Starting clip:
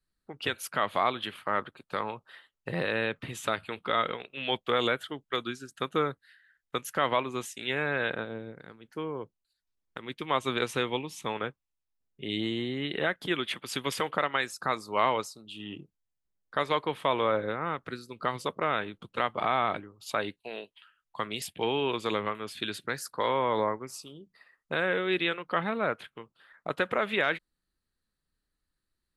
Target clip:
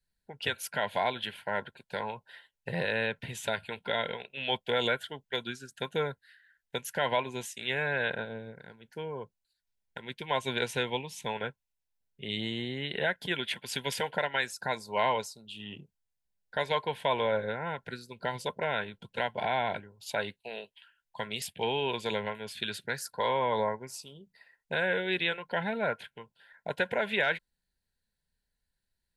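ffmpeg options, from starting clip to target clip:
-af "asuperstop=centerf=1200:order=20:qfactor=4,equalizer=f=310:w=3.9:g=-13"

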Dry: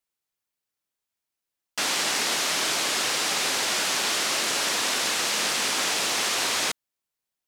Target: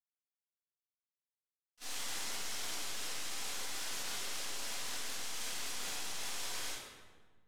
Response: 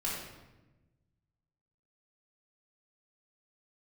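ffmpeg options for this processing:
-filter_complex "[0:a]agate=range=-47dB:threshold=-21dB:ratio=16:detection=peak,highshelf=f=4k:g=8.5,aeval=exprs='0.00531*(cos(1*acos(clip(val(0)/0.00531,-1,1)))-cos(1*PI/2))+0.000668*(cos(4*acos(clip(val(0)/0.00531,-1,1)))-cos(4*PI/2))+0.000188*(cos(6*acos(clip(val(0)/0.00531,-1,1)))-cos(6*PI/2))+0.000376*(cos(8*acos(clip(val(0)/0.00531,-1,1)))-cos(8*PI/2))':c=same[a];[1:a]atrim=start_sample=2205,asetrate=31311,aresample=44100[b];[a][b]afir=irnorm=-1:irlink=0,volume=1.5dB"

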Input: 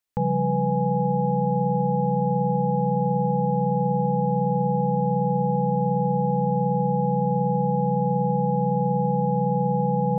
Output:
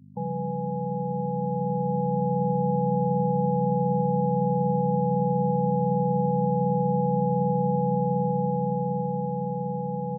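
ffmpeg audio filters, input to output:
-filter_complex "[0:a]aeval=exprs='val(0)+0.0224*(sin(2*PI*50*n/s)+sin(2*PI*2*50*n/s)/2+sin(2*PI*3*50*n/s)/3+sin(2*PI*4*50*n/s)/4+sin(2*PI*5*50*n/s)/5)':c=same,afftfilt=real='re*gte(hypot(re,im),0.0398)':imag='im*gte(hypot(re,im),0.0398)':win_size=1024:overlap=0.75,dynaudnorm=f=330:g=11:m=6dB,highpass=f=120:w=0.5412,highpass=f=120:w=1.3066,asplit=2[a][b];[b]aecho=0:1:85:0.112[c];[a][c]amix=inputs=2:normalize=0,volume=-7dB"

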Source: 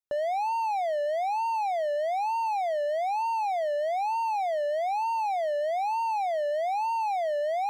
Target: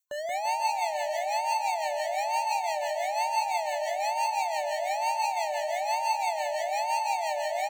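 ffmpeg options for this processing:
-filter_complex "[0:a]superequalizer=10b=0.447:11b=0.631:14b=3.16:15b=2:16b=0.708,asplit=2[a][b];[b]adynamicsmooth=sensitivity=4:basefreq=2.2k,volume=-6.5dB[c];[a][c]amix=inputs=2:normalize=0,asuperstop=centerf=5100:order=4:qfactor=3.5,equalizer=f=1.6k:w=1.1:g=10,bandreject=f=104.3:t=h:w=4,bandreject=f=208.6:t=h:w=4,bandreject=f=312.9:t=h:w=4,bandreject=f=417.2:t=h:w=4,bandreject=f=521.5:t=h:w=4,bandreject=f=625.8:t=h:w=4,bandreject=f=730.1:t=h:w=4,bandreject=f=834.4:t=h:w=4,bandreject=f=938.7:t=h:w=4,bandreject=f=1.043k:t=h:w=4,bandreject=f=1.1473k:t=h:w=4,bandreject=f=1.2516k:t=h:w=4,bandreject=f=1.3559k:t=h:w=4,bandreject=f=1.4602k:t=h:w=4,bandreject=f=1.5645k:t=h:w=4,bandreject=f=1.6688k:t=h:w=4,bandreject=f=1.7731k:t=h:w=4,bandreject=f=1.8774k:t=h:w=4,bandreject=f=1.9817k:t=h:w=4,bandreject=f=2.086k:t=h:w=4,bandreject=f=2.1903k:t=h:w=4,bandreject=f=2.2946k:t=h:w=4,bandreject=f=2.3989k:t=h:w=4,bandreject=f=2.5032k:t=h:w=4,bandreject=f=2.6075k:t=h:w=4,crystalizer=i=8:c=0,acrossover=split=650[d][e];[d]aeval=exprs='val(0)*(1-0.7/2+0.7/2*cos(2*PI*5.9*n/s))':c=same[f];[e]aeval=exprs='val(0)*(1-0.7/2-0.7/2*cos(2*PI*5.9*n/s))':c=same[g];[f][g]amix=inputs=2:normalize=0,aecho=1:1:180|342|487.8|619|737.1:0.631|0.398|0.251|0.158|0.1,volume=-8.5dB"

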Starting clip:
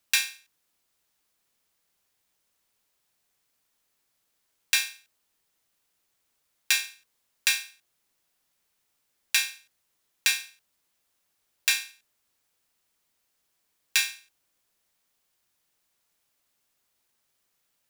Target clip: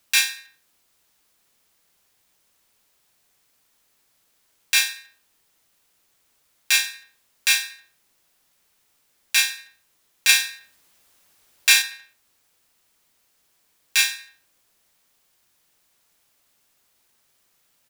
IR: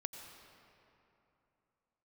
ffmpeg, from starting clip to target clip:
-filter_complex "[0:a]asettb=1/sr,asplit=3[a][b][c];[a]atrim=end=10.294[d];[b]atrim=start=10.29:end=11.82,asetpts=PTS-STARTPTS,afade=t=in:d=0.004:c=qsin,afade=t=out:st=1.526:d=0.004:c=qsin,acontrast=35[e];[c]atrim=start=11.816[f];[d][e]acrossfade=d=0.004:c1=hsin:c2=qsin[g];[g][f]acrossfade=d=0.004:c1=qsin:c2=hsin,asplit=2[h][i];[i]adelay=79,lowpass=f=3.9k:p=1,volume=-18dB,asplit=2[j][k];[k]adelay=79,lowpass=f=3.9k:p=1,volume=0.52,asplit=2[l][m];[m]adelay=79,lowpass=f=3.9k:p=1,volume=0.52,asplit=2[n][o];[o]adelay=79,lowpass=f=3.9k:p=1,volume=0.52[p];[j][l][n][p]amix=inputs=4:normalize=0[q];[h][q]amix=inputs=2:normalize=0,alimiter=level_in=10dB:limit=-1dB:release=50:level=0:latency=1,volume=-1dB"

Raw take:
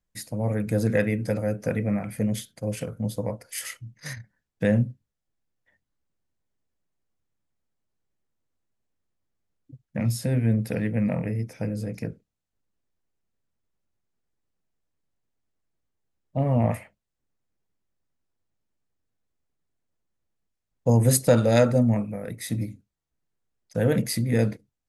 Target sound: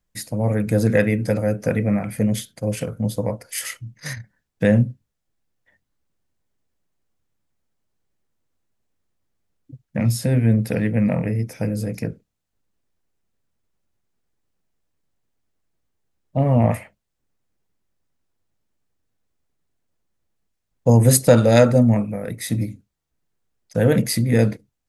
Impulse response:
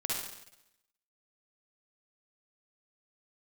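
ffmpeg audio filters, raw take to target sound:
-filter_complex "[0:a]asettb=1/sr,asplit=3[a][b][c];[a]atrim=end=11.494[d];[b]atrim=start=11.49:end=12.01,asetpts=PTS-STARTPTS,afade=t=in:d=0.004:c=qsin,afade=t=out:st=0.516:d=0.004:c=qsin,highshelf=f=8.7k:g=8.5[e];[c]atrim=start=12.006[f];[d][e]acrossfade=d=0.004:c1=hsin:c2=qsin[g];[g][f]acrossfade=d=0.004:c1=qsin:c2=hsin,volume=5.5dB"

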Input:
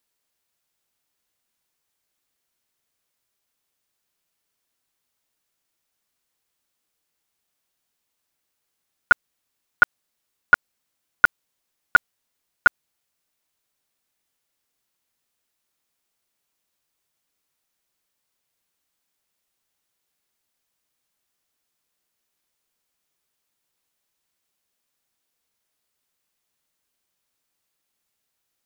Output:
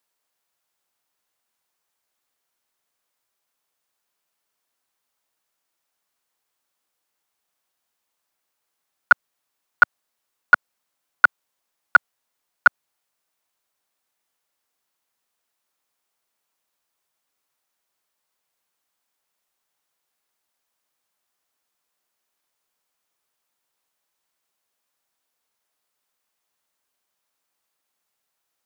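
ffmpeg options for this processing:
-filter_complex "[0:a]lowshelf=f=180:g=-7.5,acrossover=split=130|660|1300[a][b][c][d];[c]acontrast=80[e];[a][b][e][d]amix=inputs=4:normalize=0,volume=-1dB"

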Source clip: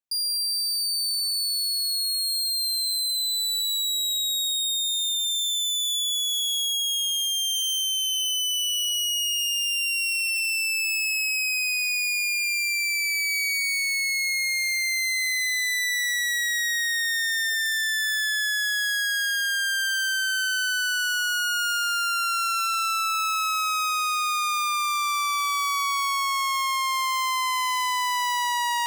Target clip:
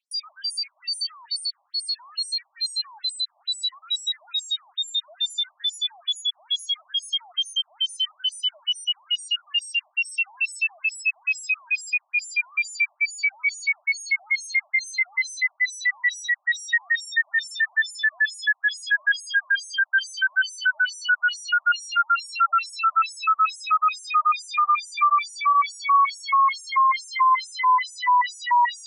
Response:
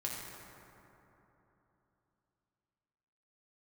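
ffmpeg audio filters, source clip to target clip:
-filter_complex "[0:a]equalizer=f=6.3k:w=2:g=-13,asplit=2[a][b];[b]highpass=f=720:p=1,volume=20dB,asoftclip=type=tanh:threshold=-20dB[c];[a][c]amix=inputs=2:normalize=0,lowpass=f=1.9k:p=1,volume=-6dB,asplit=2[d][e];[1:a]atrim=start_sample=2205,asetrate=43218,aresample=44100[f];[e][f]afir=irnorm=-1:irlink=0,volume=-18.5dB[g];[d][g]amix=inputs=2:normalize=0,afftfilt=real='re*between(b*sr/1024,810*pow(7900/810,0.5+0.5*sin(2*PI*2.3*pts/sr))/1.41,810*pow(7900/810,0.5+0.5*sin(2*PI*2.3*pts/sr))*1.41)':imag='im*between(b*sr/1024,810*pow(7900/810,0.5+0.5*sin(2*PI*2.3*pts/sr))/1.41,810*pow(7900/810,0.5+0.5*sin(2*PI*2.3*pts/sr))*1.41)':win_size=1024:overlap=0.75,volume=8.5dB"

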